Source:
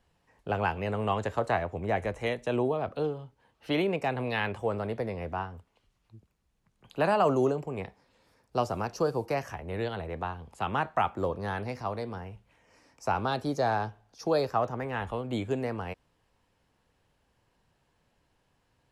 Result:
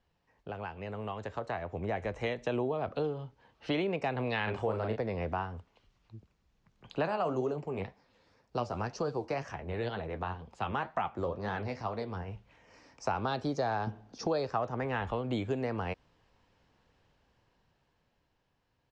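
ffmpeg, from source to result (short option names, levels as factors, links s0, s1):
-filter_complex "[0:a]asplit=3[s0][s1][s2];[s0]afade=t=out:st=4.46:d=0.02[s3];[s1]asplit=2[s4][s5];[s5]adelay=37,volume=0.631[s6];[s4][s6]amix=inputs=2:normalize=0,afade=t=in:st=4.46:d=0.02,afade=t=out:st=4.95:d=0.02[s7];[s2]afade=t=in:st=4.95:d=0.02[s8];[s3][s7][s8]amix=inputs=3:normalize=0,asplit=3[s9][s10][s11];[s9]afade=t=out:st=7.06:d=0.02[s12];[s10]flanger=delay=3.8:depth=9.4:regen=55:speed=2:shape=triangular,afade=t=in:st=7.06:d=0.02,afade=t=out:st=12.27:d=0.02[s13];[s11]afade=t=in:st=12.27:d=0.02[s14];[s12][s13][s14]amix=inputs=3:normalize=0,asettb=1/sr,asplit=3[s15][s16][s17];[s15]atrim=end=13.874[s18];[s16]atrim=start=13.87:end=14.27,asetpts=PTS-STARTPTS,afade=t=in:d=0.004:c=qsin,afade=t=out:st=0.396:d=0.004:c=qsin,equalizer=f=240:w=0.78:g=14.5[s19];[s17]atrim=start=14.266[s20];[s18][s19]acrossfade=d=0.004:c1=hsin:c2=qsin[s21];[s21][s20]acrossfade=d=0.004:c1=qsin:c2=hsin,acompressor=threshold=0.0224:ratio=3,lowpass=f=6400:w=0.5412,lowpass=f=6400:w=1.3066,dynaudnorm=f=160:g=21:m=2.66,volume=0.531"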